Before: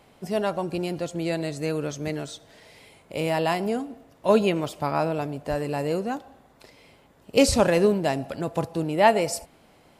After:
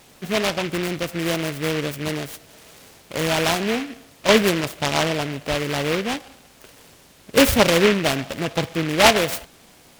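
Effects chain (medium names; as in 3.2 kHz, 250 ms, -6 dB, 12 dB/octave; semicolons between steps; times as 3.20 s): whistle 2.7 kHz -55 dBFS; delay time shaken by noise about 2 kHz, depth 0.18 ms; trim +3.5 dB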